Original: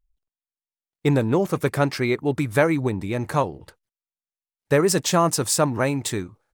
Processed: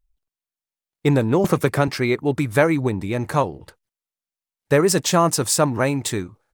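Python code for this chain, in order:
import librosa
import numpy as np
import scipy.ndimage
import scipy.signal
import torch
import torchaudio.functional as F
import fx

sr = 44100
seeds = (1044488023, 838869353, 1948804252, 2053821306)

y = fx.band_squash(x, sr, depth_pct=100, at=(1.44, 1.88))
y = y * 10.0 ** (2.0 / 20.0)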